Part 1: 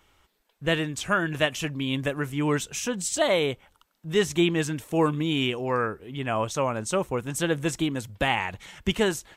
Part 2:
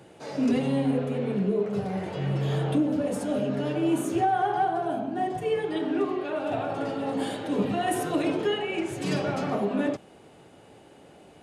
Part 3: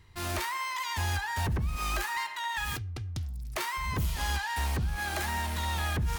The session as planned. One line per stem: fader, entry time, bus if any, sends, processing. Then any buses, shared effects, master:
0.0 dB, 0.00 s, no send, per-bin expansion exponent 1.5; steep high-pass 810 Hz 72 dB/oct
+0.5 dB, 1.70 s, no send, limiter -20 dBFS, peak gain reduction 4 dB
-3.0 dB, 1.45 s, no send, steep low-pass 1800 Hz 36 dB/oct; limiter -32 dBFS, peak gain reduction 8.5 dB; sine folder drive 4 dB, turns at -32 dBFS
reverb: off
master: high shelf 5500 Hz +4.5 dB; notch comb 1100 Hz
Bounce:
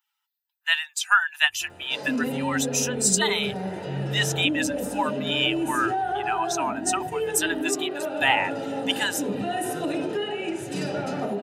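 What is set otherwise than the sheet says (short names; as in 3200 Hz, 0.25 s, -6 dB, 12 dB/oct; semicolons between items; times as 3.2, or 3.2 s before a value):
stem 1 0.0 dB -> +8.5 dB; stem 3 -3.0 dB -> -13.0 dB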